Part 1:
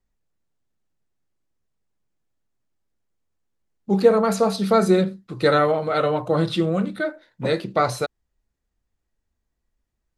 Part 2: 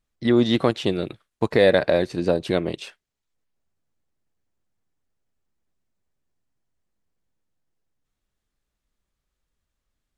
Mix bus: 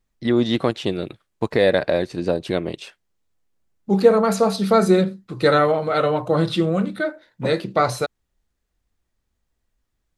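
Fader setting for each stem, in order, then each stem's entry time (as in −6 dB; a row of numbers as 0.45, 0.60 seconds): +1.5, −0.5 decibels; 0.00, 0.00 seconds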